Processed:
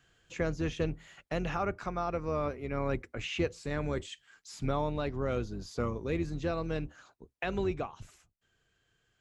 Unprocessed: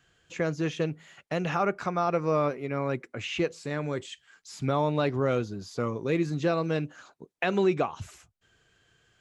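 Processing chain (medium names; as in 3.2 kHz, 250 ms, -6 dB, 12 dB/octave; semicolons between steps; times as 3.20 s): octave divider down 2 oct, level -3 dB; gain riding within 4 dB 0.5 s; trim -5.5 dB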